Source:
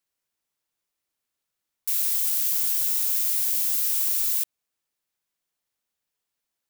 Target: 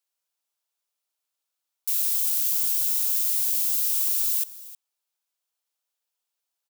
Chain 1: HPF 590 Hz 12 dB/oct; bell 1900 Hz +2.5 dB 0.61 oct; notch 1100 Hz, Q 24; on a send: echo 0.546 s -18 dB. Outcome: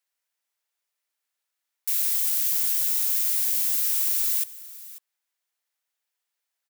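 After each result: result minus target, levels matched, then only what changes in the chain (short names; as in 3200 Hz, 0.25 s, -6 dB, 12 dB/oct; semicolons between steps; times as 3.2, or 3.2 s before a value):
echo 0.232 s late; 2000 Hz band +5.0 dB
change: echo 0.314 s -18 dB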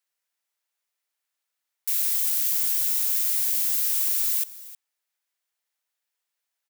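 2000 Hz band +5.0 dB
change: bell 1900 Hz -6.5 dB 0.61 oct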